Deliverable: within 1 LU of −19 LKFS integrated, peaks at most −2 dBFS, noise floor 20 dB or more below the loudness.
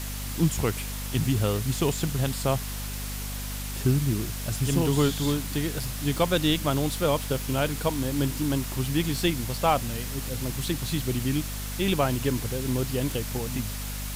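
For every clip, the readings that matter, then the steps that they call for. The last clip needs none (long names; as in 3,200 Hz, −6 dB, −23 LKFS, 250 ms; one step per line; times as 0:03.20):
mains hum 50 Hz; hum harmonics up to 250 Hz; level of the hum −32 dBFS; background noise floor −33 dBFS; target noise floor −47 dBFS; integrated loudness −27.0 LKFS; sample peak −9.5 dBFS; target loudness −19.0 LKFS
→ mains-hum notches 50/100/150/200/250 Hz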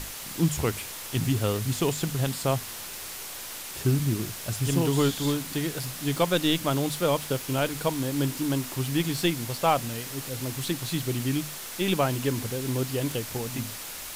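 mains hum none found; background noise floor −38 dBFS; target noise floor −48 dBFS
→ broadband denoise 10 dB, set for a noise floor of −38 dBFS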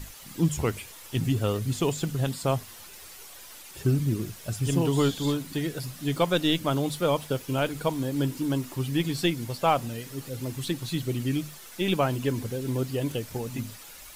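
background noise floor −46 dBFS; target noise floor −48 dBFS
→ broadband denoise 6 dB, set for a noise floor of −46 dBFS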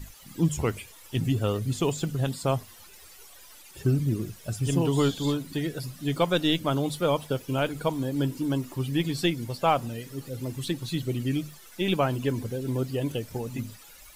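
background noise floor −50 dBFS; integrated loudness −28.5 LKFS; sample peak −10.5 dBFS; target loudness −19.0 LKFS
→ level +9.5 dB
brickwall limiter −2 dBFS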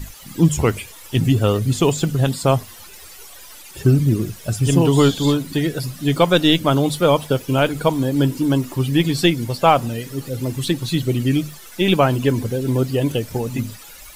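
integrated loudness −19.0 LKFS; sample peak −2.0 dBFS; background noise floor −41 dBFS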